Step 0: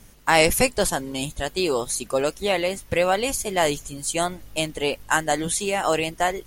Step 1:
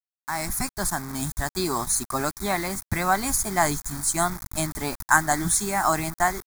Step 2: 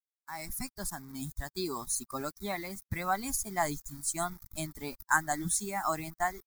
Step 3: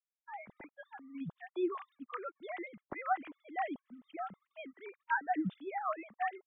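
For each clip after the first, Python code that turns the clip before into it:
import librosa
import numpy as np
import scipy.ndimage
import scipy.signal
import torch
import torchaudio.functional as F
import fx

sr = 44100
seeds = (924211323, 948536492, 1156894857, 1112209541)

y1 = fx.fade_in_head(x, sr, length_s=1.5)
y1 = fx.quant_dither(y1, sr, seeds[0], bits=6, dither='none')
y1 = fx.fixed_phaser(y1, sr, hz=1200.0, stages=4)
y1 = y1 * 10.0 ** (4.5 / 20.0)
y2 = fx.bin_expand(y1, sr, power=1.5)
y2 = y2 * 10.0 ** (-6.5 / 20.0)
y3 = fx.sine_speech(y2, sr)
y3 = fx.low_shelf(y3, sr, hz=200.0, db=4.5)
y3 = y3 * 10.0 ** (-5.5 / 20.0)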